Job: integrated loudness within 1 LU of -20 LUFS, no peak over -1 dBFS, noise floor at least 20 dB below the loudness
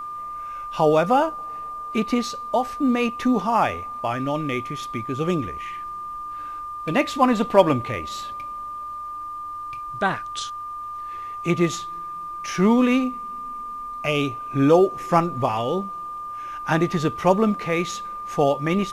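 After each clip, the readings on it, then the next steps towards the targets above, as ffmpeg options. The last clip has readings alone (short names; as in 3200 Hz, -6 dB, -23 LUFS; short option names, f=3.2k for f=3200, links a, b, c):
steady tone 1200 Hz; tone level -30 dBFS; loudness -23.5 LUFS; peak -1.0 dBFS; loudness target -20.0 LUFS
-> -af "bandreject=f=1.2k:w=30"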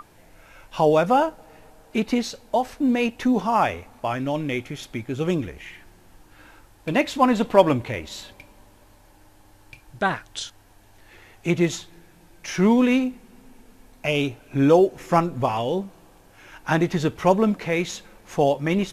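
steady tone none; loudness -22.5 LUFS; peak -1.5 dBFS; loudness target -20.0 LUFS
-> -af "volume=2.5dB,alimiter=limit=-1dB:level=0:latency=1"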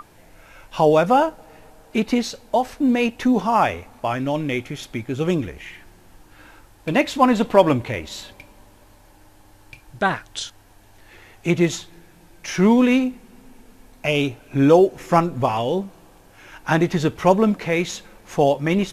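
loudness -20.0 LUFS; peak -1.0 dBFS; noise floor -51 dBFS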